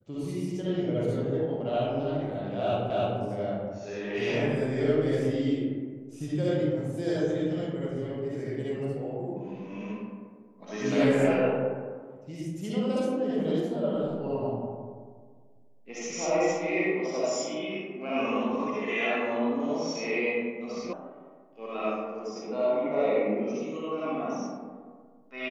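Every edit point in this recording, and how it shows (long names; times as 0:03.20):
0:02.90: the same again, the last 0.3 s
0:20.93: cut off before it has died away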